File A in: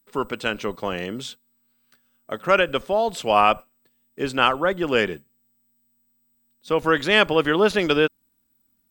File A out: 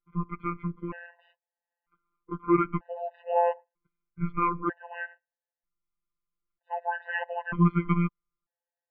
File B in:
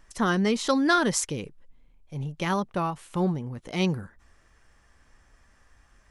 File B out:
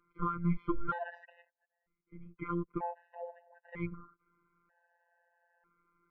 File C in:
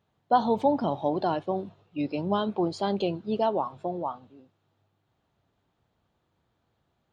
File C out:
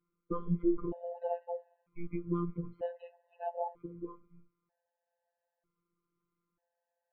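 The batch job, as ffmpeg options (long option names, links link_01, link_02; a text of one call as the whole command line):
ffmpeg -i in.wav -af "highpass=frequency=270:width_type=q:width=0.5412,highpass=frequency=270:width_type=q:width=1.307,lowpass=frequency=2200:width_type=q:width=0.5176,lowpass=frequency=2200:width_type=q:width=0.7071,lowpass=frequency=2200:width_type=q:width=1.932,afreqshift=-250,afftfilt=real='hypot(re,im)*cos(PI*b)':imag='0':win_size=1024:overlap=0.75,afftfilt=real='re*gt(sin(2*PI*0.53*pts/sr)*(1-2*mod(floor(b*sr/1024/510),2)),0)':imag='im*gt(sin(2*PI*0.53*pts/sr)*(1-2*mod(floor(b*sr/1024/510),2)),0)':win_size=1024:overlap=0.75,volume=-1dB" out.wav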